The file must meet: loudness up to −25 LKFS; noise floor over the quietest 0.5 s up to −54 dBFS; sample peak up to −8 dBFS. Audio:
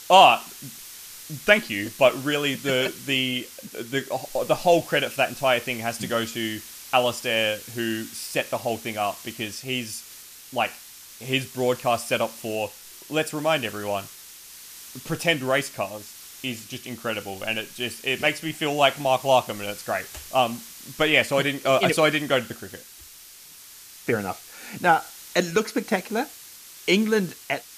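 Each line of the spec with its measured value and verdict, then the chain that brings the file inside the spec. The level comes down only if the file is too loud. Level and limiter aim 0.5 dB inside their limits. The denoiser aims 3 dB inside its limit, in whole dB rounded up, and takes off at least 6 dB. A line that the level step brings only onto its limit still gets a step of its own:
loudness −24.0 LKFS: out of spec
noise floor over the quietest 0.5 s −46 dBFS: out of spec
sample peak −1.5 dBFS: out of spec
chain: broadband denoise 10 dB, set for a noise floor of −46 dBFS
level −1.5 dB
brickwall limiter −8.5 dBFS

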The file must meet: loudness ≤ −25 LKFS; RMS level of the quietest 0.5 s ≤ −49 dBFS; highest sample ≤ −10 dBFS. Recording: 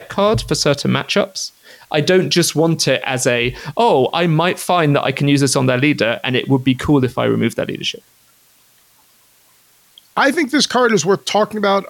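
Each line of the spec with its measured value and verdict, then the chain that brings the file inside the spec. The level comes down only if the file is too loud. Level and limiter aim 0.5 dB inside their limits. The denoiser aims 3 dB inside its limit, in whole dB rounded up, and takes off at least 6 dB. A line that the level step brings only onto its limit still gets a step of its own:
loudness −16.0 LKFS: out of spec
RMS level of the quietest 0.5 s −53 dBFS: in spec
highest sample −4.0 dBFS: out of spec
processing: level −9.5 dB

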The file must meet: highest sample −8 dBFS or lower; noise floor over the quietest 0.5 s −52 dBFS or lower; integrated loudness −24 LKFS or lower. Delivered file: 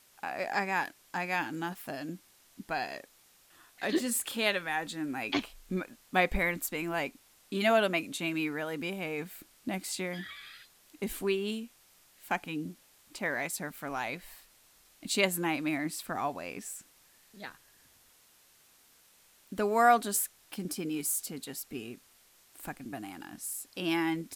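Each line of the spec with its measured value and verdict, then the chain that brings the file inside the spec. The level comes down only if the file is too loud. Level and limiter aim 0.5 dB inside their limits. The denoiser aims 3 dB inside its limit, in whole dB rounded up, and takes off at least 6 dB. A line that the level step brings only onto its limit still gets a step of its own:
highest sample −11.5 dBFS: in spec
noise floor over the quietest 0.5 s −63 dBFS: in spec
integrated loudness −32.5 LKFS: in spec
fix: no processing needed

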